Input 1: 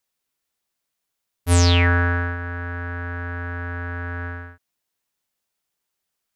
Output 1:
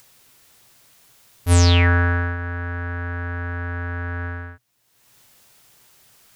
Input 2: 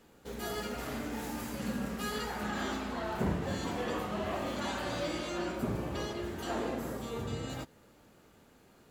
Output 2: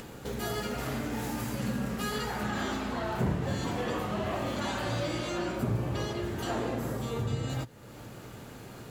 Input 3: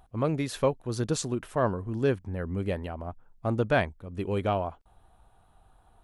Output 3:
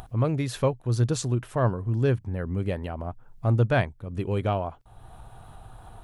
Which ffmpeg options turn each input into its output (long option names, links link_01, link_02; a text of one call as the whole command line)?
ffmpeg -i in.wav -filter_complex "[0:a]equalizer=frequency=120:width_type=o:width=0.39:gain=11.5,asplit=2[link_01][link_02];[link_02]acompressor=mode=upward:threshold=-23dB:ratio=2.5,volume=0dB[link_03];[link_01][link_03]amix=inputs=2:normalize=0,volume=-6dB" out.wav